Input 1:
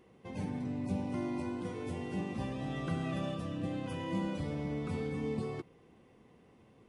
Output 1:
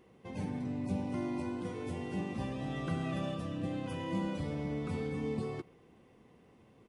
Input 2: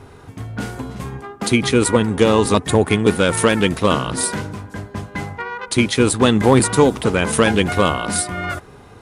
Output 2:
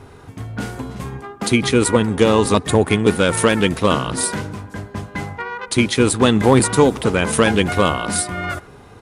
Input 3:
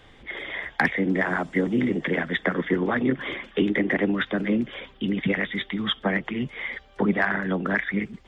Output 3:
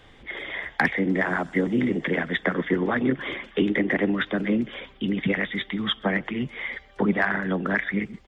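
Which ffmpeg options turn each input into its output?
-filter_complex "[0:a]asplit=2[s0][s1];[s1]adelay=130,highpass=300,lowpass=3400,asoftclip=type=hard:threshold=0.299,volume=0.0631[s2];[s0][s2]amix=inputs=2:normalize=0"

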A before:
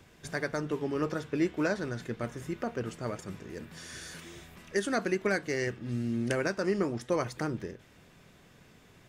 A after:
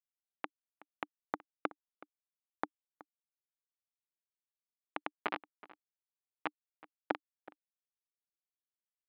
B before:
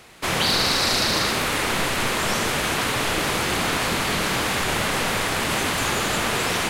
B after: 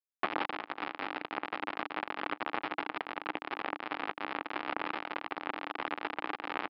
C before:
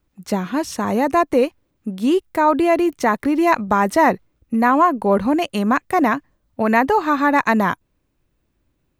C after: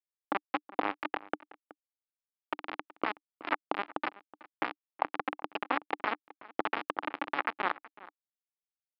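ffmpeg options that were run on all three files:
-filter_complex "[0:a]afftfilt=real='re*lt(hypot(re,im),0.501)':imag='im*lt(hypot(re,im),0.501)':win_size=1024:overlap=0.75,afwtdn=0.0355,acompressor=threshold=0.0398:ratio=8,aresample=11025,acrusher=bits=3:mix=0:aa=0.000001,aresample=44100,highpass=270,equalizer=f=300:t=q:w=4:g=10,equalizer=f=830:t=q:w=4:g=7,equalizer=f=1200:t=q:w=4:g=5,lowpass=f=2600:w=0.5412,lowpass=f=2600:w=1.3066,asplit=2[s0][s1];[s1]adelay=373.2,volume=0.112,highshelf=f=4000:g=-8.4[s2];[s0][s2]amix=inputs=2:normalize=0"

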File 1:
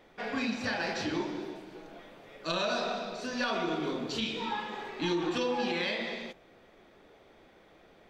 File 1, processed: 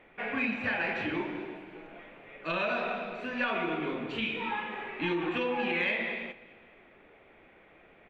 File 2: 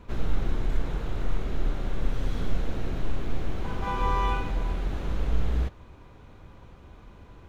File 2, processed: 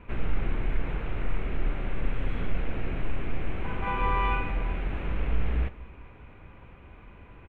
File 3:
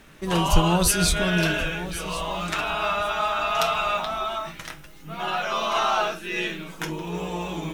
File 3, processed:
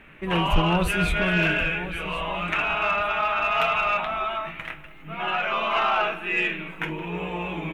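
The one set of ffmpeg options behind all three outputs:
-af "highshelf=f=3600:t=q:w=3:g=-13.5,aecho=1:1:207|414|621|828:0.0891|0.0463|0.0241|0.0125,acontrast=85,volume=0.398"

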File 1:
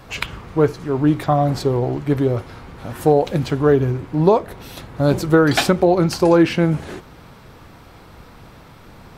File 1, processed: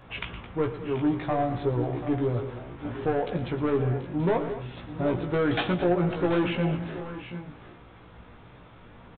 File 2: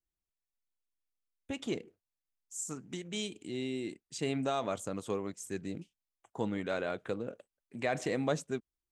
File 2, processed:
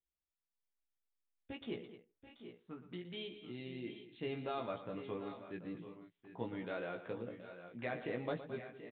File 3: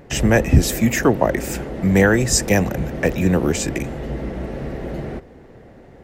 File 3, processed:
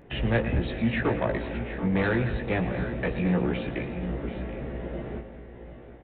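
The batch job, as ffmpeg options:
-filter_complex "[0:a]aresample=8000,asoftclip=type=tanh:threshold=0.251,aresample=44100,asplit=2[s0][s1];[s1]adelay=17,volume=0.631[s2];[s0][s2]amix=inputs=2:normalize=0,aecho=1:1:116|216|733|767:0.224|0.188|0.211|0.211,volume=0.376"

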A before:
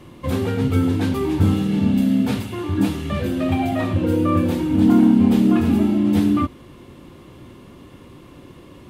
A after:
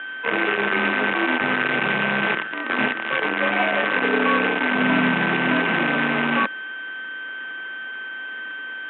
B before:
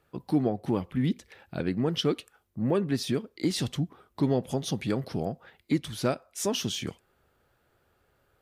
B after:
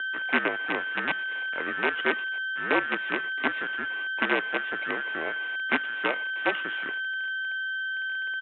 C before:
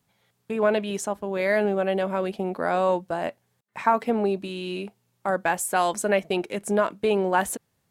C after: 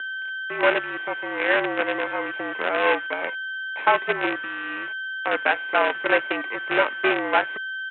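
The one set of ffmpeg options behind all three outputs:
-af "aeval=exprs='val(0)+0.0447*sin(2*PI*1600*n/s)':c=same,aresample=8000,acrusher=bits=4:dc=4:mix=0:aa=0.000001,aresample=44100,highpass=f=360:t=q:w=0.5412,highpass=f=360:t=q:w=1.307,lowpass=f=2700:t=q:w=0.5176,lowpass=f=2700:t=q:w=0.7071,lowpass=f=2700:t=q:w=1.932,afreqshift=-58,crystalizer=i=3:c=0,volume=1.12"

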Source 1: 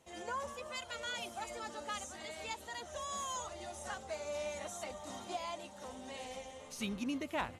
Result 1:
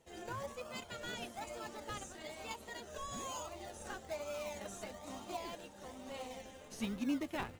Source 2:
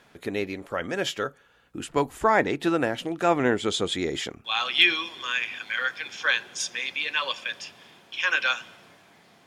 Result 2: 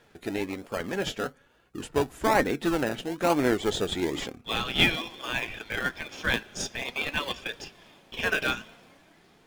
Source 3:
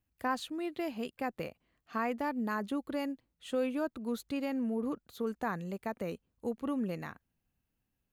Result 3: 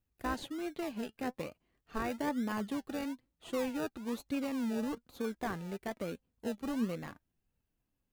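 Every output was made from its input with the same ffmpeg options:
-filter_complex "[0:a]asplit=2[s0][s1];[s1]acrusher=samples=32:mix=1:aa=0.000001:lfo=1:lforange=19.2:lforate=1.1,volume=0.631[s2];[s0][s2]amix=inputs=2:normalize=0,flanger=delay=2.1:depth=3:regen=68:speed=0.53:shape=triangular"

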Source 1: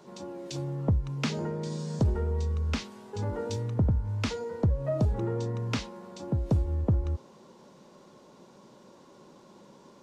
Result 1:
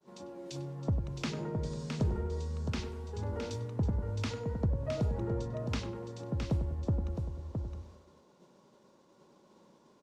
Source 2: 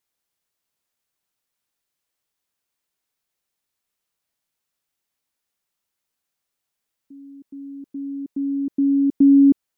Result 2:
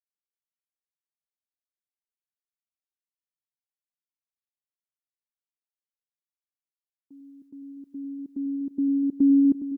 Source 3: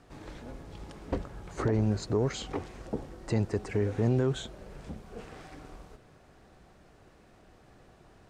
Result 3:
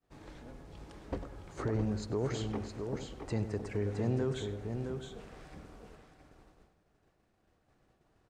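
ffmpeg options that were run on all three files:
-filter_complex "[0:a]asplit=2[s0][s1];[s1]aecho=0:1:665:0.501[s2];[s0][s2]amix=inputs=2:normalize=0,agate=range=0.0224:threshold=0.00398:ratio=3:detection=peak,asplit=2[s3][s4];[s4]adelay=98,lowpass=f=2000:p=1,volume=0.316,asplit=2[s5][s6];[s6]adelay=98,lowpass=f=2000:p=1,volume=0.42,asplit=2[s7][s8];[s8]adelay=98,lowpass=f=2000:p=1,volume=0.42,asplit=2[s9][s10];[s10]adelay=98,lowpass=f=2000:p=1,volume=0.42[s11];[s5][s7][s9][s11]amix=inputs=4:normalize=0[s12];[s3][s12]amix=inputs=2:normalize=0,volume=0.501"

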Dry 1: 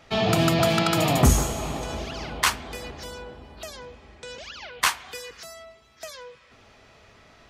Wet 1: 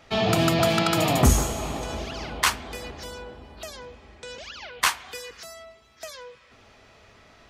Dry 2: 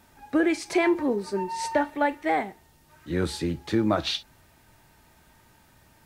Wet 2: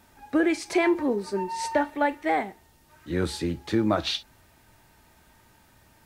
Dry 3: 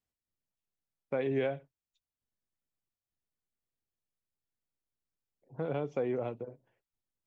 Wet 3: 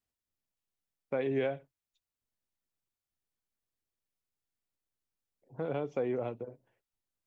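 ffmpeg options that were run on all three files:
-af "equalizer=f=150:t=o:w=0.24:g=-4"

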